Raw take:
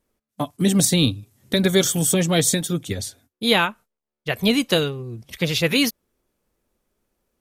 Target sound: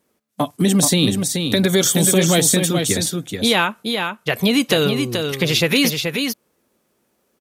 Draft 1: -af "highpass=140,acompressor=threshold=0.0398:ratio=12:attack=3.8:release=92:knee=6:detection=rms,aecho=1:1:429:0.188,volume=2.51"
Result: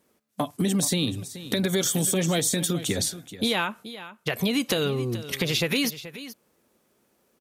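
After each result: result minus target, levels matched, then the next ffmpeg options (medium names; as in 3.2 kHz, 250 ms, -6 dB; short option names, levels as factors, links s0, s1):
compression: peak gain reduction +8.5 dB; echo-to-direct -9 dB
-af "highpass=140,acompressor=threshold=0.119:ratio=12:attack=3.8:release=92:knee=6:detection=rms,aecho=1:1:429:0.188,volume=2.51"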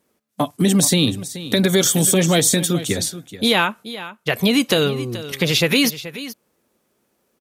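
echo-to-direct -9 dB
-af "highpass=140,acompressor=threshold=0.119:ratio=12:attack=3.8:release=92:knee=6:detection=rms,aecho=1:1:429:0.531,volume=2.51"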